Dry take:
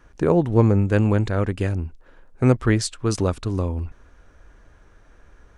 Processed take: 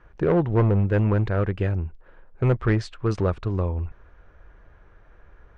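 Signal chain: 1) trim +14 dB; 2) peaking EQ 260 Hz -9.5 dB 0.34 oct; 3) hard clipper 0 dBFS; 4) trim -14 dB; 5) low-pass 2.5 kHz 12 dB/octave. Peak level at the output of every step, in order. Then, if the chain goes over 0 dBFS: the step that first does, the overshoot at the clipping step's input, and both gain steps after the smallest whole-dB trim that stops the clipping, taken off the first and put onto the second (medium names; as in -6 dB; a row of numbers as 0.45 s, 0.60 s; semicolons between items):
+10.5 dBFS, +9.5 dBFS, 0.0 dBFS, -14.0 dBFS, -13.5 dBFS; step 1, 9.5 dB; step 1 +4 dB, step 4 -4 dB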